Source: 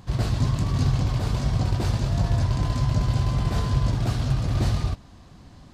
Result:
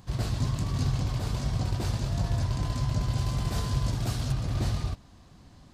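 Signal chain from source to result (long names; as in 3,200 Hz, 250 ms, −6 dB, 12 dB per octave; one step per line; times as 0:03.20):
high-shelf EQ 5,200 Hz +6 dB, from 0:03.18 +11.5 dB, from 0:04.32 +4 dB
level −5.5 dB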